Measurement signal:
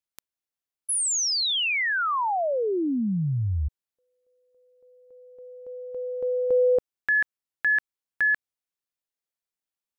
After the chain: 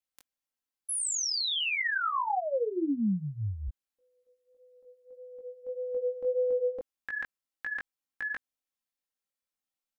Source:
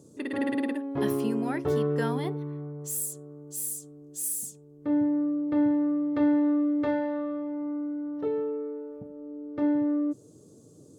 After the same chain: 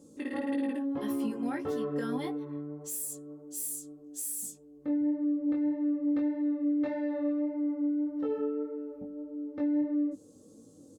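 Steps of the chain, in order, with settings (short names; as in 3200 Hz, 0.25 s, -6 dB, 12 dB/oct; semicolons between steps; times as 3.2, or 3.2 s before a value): comb 3.8 ms, depth 71%; limiter -22.5 dBFS; chorus 1.7 Hz, delay 17.5 ms, depth 3.6 ms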